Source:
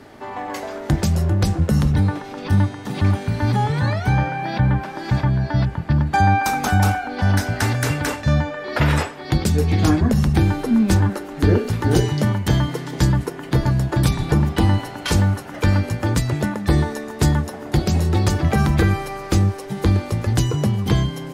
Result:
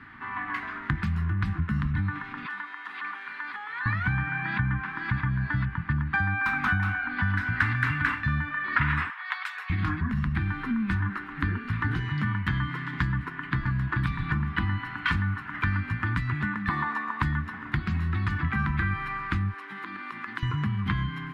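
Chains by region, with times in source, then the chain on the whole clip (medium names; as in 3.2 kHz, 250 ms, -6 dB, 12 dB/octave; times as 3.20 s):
2.46–3.86 s: high-pass 440 Hz 24 dB/octave + compression 2:1, threshold -34 dBFS
9.10–9.70 s: steep high-pass 680 Hz + band-stop 4.7 kHz, Q 14
16.69–17.22 s: high-pass 230 Hz + high-order bell 870 Hz +10 dB 1.1 oct
19.54–20.43 s: high-pass 280 Hz 24 dB/octave + compression, threshold -28 dBFS
whole clip: band-stop 870 Hz, Q 12; compression, threshold -19 dBFS; FFT filter 190 Hz 0 dB, 280 Hz -3 dB, 560 Hz -28 dB, 1 kHz +6 dB, 1.8 kHz +10 dB, 4 kHz -7 dB, 6.1 kHz -22 dB; trim -4.5 dB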